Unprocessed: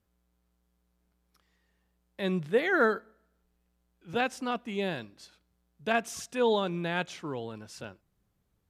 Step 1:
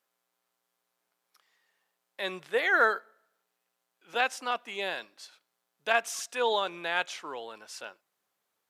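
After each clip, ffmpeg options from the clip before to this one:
-af "highpass=680,volume=4dB"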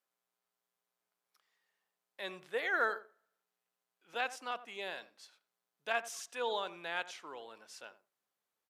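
-filter_complex "[0:a]asplit=2[a][b];[b]adelay=88,lowpass=f=920:p=1,volume=-12.5dB,asplit=2[c][d];[d]adelay=88,lowpass=f=920:p=1,volume=0.18[e];[a][c][e]amix=inputs=3:normalize=0,volume=-8.5dB"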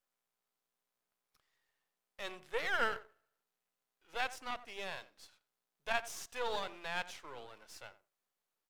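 -af "aeval=exprs='if(lt(val(0),0),0.251*val(0),val(0))':c=same,volume=2dB"

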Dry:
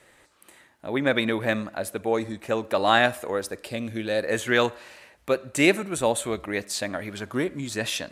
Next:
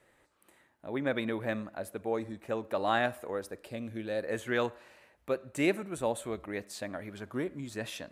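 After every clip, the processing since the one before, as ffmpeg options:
-af "equalizer=f=5.7k:t=o:w=2.9:g=-7,volume=-7.5dB"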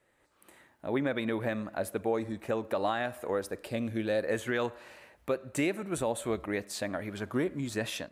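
-af "alimiter=level_in=1dB:limit=-24dB:level=0:latency=1:release=274,volume=-1dB,dynaudnorm=f=200:g=3:m=11.5dB,volume=-5.5dB"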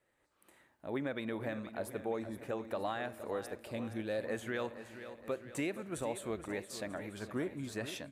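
-af "aecho=1:1:470|940|1410|1880|2350|2820:0.251|0.141|0.0788|0.0441|0.0247|0.0138,volume=-7dB"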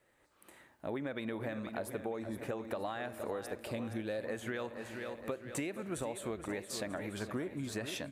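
-af "acompressor=threshold=-41dB:ratio=6,volume=6dB"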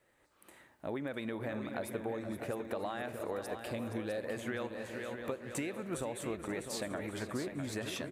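-af "aecho=1:1:653:0.398"

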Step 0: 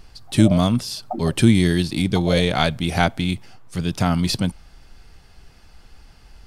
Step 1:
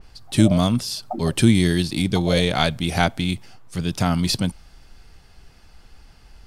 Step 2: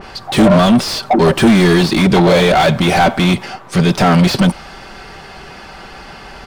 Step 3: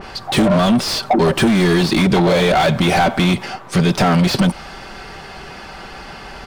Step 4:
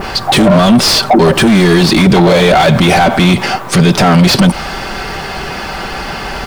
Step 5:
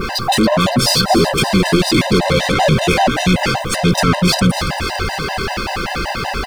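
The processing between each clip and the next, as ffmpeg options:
-af "adynamicequalizer=threshold=0.0158:dfrequency=3300:dqfactor=0.7:tfrequency=3300:tqfactor=0.7:attack=5:release=100:ratio=0.375:range=1.5:mode=boostabove:tftype=highshelf,volume=-1dB"
-filter_complex "[0:a]aecho=1:1:5.2:0.32,asplit=2[a][b];[b]highpass=f=720:p=1,volume=34dB,asoftclip=type=tanh:threshold=-2dB[c];[a][c]amix=inputs=2:normalize=0,lowpass=f=1.1k:p=1,volume=-6dB,volume=1.5dB"
-af "acompressor=threshold=-11dB:ratio=6"
-af "acrusher=bits=8:mix=0:aa=0.000001,alimiter=level_in=14dB:limit=-1dB:release=50:level=0:latency=1,volume=-1dB"
-filter_complex "[0:a]asoftclip=type=tanh:threshold=-12dB,asplit=2[a][b];[b]asplit=8[c][d][e][f][g][h][i][j];[c]adelay=280,afreqshift=-48,volume=-9dB[k];[d]adelay=560,afreqshift=-96,volume=-13dB[l];[e]adelay=840,afreqshift=-144,volume=-17dB[m];[f]adelay=1120,afreqshift=-192,volume=-21dB[n];[g]adelay=1400,afreqshift=-240,volume=-25.1dB[o];[h]adelay=1680,afreqshift=-288,volume=-29.1dB[p];[i]adelay=1960,afreqshift=-336,volume=-33.1dB[q];[j]adelay=2240,afreqshift=-384,volume=-37.1dB[r];[k][l][m][n][o][p][q][r]amix=inputs=8:normalize=0[s];[a][s]amix=inputs=2:normalize=0,afftfilt=real='re*gt(sin(2*PI*5.2*pts/sr)*(1-2*mod(floor(b*sr/1024/520),2)),0)':imag='im*gt(sin(2*PI*5.2*pts/sr)*(1-2*mod(floor(b*sr/1024/520),2)),0)':win_size=1024:overlap=0.75,volume=3dB"

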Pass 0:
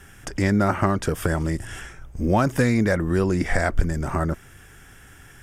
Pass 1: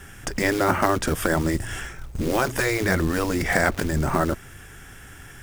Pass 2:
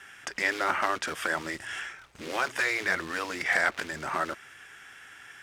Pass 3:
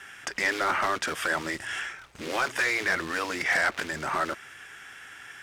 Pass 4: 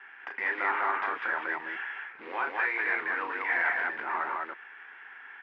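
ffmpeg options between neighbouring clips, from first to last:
-af "acrusher=bits=5:mode=log:mix=0:aa=0.000001,afftfilt=real='re*lt(hypot(re,im),0.501)':imag='im*lt(hypot(re,im),0.501)':win_size=1024:overlap=0.75,volume=4dB"
-af "asoftclip=type=tanh:threshold=-7dB,bandpass=f=2.3k:t=q:w=0.74:csg=0"
-af "asoftclip=type=tanh:threshold=-21dB,volume=3.5dB"
-filter_complex "[0:a]highpass=490,equalizer=f=600:t=q:w=4:g=-10,equalizer=f=920:t=q:w=4:g=5,equalizer=f=1.3k:t=q:w=4:g=-4,lowpass=f=2.2k:w=0.5412,lowpass=f=2.2k:w=1.3066,asplit=2[a][b];[b]aecho=0:1:34.99|198.3:0.501|0.794[c];[a][c]amix=inputs=2:normalize=0,volume=-2.5dB"

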